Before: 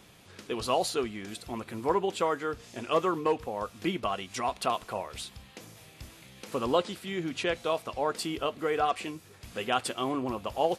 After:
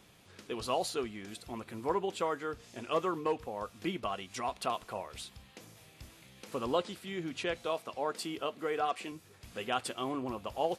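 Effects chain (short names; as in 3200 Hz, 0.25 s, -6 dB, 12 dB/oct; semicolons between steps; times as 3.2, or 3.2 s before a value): 7.66–9.12 HPF 150 Hz 12 dB/oct; gain -5 dB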